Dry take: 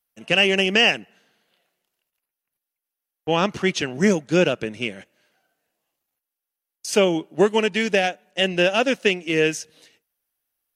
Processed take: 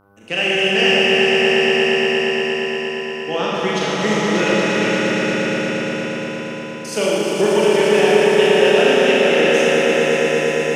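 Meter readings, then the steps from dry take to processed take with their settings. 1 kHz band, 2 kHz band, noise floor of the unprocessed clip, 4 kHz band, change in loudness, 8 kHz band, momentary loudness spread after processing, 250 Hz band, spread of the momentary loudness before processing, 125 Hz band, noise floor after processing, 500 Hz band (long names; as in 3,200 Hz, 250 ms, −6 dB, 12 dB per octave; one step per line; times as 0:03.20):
+7.0 dB, +6.5 dB, below −85 dBFS, +5.5 dB, +4.5 dB, +5.0 dB, 11 LU, +5.0 dB, 11 LU, +3.5 dB, −28 dBFS, +8.5 dB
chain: low-shelf EQ 100 Hz −11 dB
hum with harmonics 100 Hz, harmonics 15, −52 dBFS −2 dB per octave
on a send: echo that builds up and dies away 117 ms, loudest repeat 5, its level −7 dB
on the sum: four-comb reverb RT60 3 s, combs from 26 ms, DRR −6 dB
level −4.5 dB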